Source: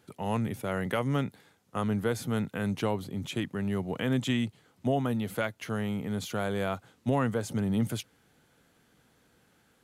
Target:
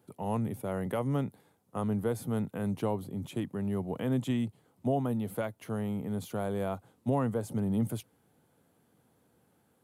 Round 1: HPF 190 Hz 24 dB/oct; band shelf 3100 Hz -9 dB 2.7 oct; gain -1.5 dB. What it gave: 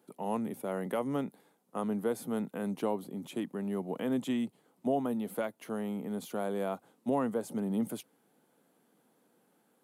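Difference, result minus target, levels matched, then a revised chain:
125 Hz band -8.5 dB
HPF 71 Hz 24 dB/oct; band shelf 3100 Hz -9 dB 2.7 oct; gain -1.5 dB

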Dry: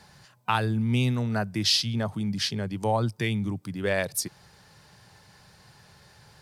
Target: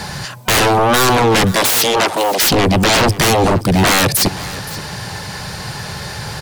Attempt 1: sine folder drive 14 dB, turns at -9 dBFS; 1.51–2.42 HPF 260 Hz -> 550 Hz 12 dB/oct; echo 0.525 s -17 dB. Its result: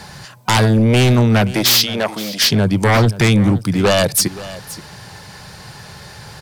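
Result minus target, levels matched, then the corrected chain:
sine folder: distortion -32 dB
sine folder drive 24 dB, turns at -9 dBFS; 1.51–2.42 HPF 260 Hz -> 550 Hz 12 dB/oct; echo 0.525 s -17 dB

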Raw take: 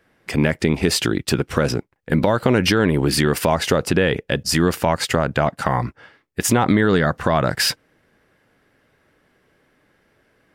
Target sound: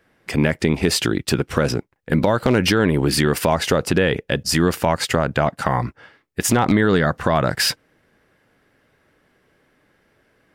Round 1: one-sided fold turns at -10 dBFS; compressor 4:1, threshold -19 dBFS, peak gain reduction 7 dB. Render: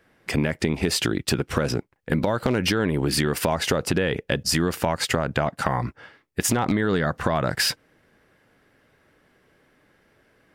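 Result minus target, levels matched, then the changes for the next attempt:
compressor: peak gain reduction +7 dB
remove: compressor 4:1, threshold -19 dBFS, peak gain reduction 7 dB

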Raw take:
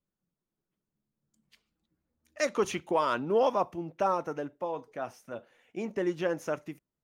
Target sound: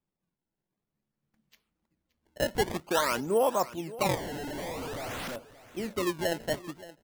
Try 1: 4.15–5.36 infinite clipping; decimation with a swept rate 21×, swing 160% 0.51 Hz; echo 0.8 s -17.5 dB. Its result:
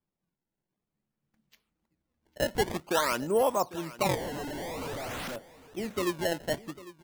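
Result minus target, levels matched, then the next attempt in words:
echo 0.227 s late
4.15–5.36 infinite clipping; decimation with a swept rate 21×, swing 160% 0.51 Hz; echo 0.573 s -17.5 dB

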